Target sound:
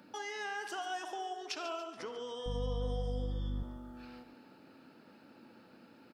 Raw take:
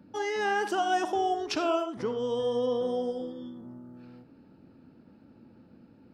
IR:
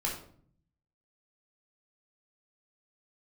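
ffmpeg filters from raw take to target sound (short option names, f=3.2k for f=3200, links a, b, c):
-filter_complex "[0:a]highpass=f=1.3k:p=1,acompressor=threshold=-56dB:ratio=2.5,asettb=1/sr,asplit=3[a][b][c];[a]atrim=end=2.464[d];[b]atrim=start=2.46:end=3.63,asetpts=PTS-STARTPTS,afade=t=in:d=0.004:c=qsin,afade=t=out:st=1.166:d=0.004:c=qsin,aeval=exprs='val(0)+0.00562*(sin(2*PI*50*n/s)+sin(2*PI*2*50*n/s)/2+sin(2*PI*3*50*n/s)/3+sin(2*PI*4*50*n/s)/4+sin(2*PI*5*50*n/s)/5)':c=same[e];[c]atrim=start=3.626[f];[d][e]acrossfade=d=0.004:c1=hsin:c2=qsin[g];[g][f]acrossfade=d=0.004:c1=qsin:c2=hsin,aecho=1:1:142|284|426|568|710:0.237|0.119|0.0593|0.0296|0.0148,volume=9.5dB"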